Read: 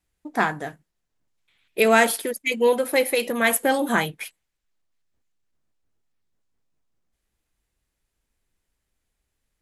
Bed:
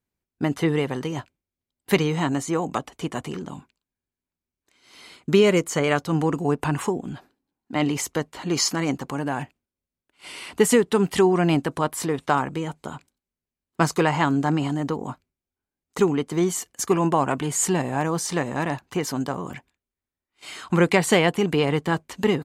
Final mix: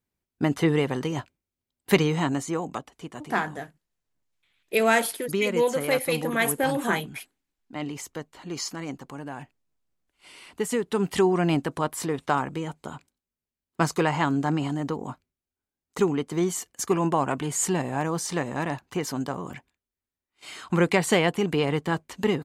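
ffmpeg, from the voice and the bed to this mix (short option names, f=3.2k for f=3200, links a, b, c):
-filter_complex "[0:a]adelay=2950,volume=-4dB[a];[1:a]volume=7dB,afade=t=out:st=2.01:d=0.97:silence=0.316228,afade=t=in:st=10.71:d=0.42:silence=0.446684[b];[a][b]amix=inputs=2:normalize=0"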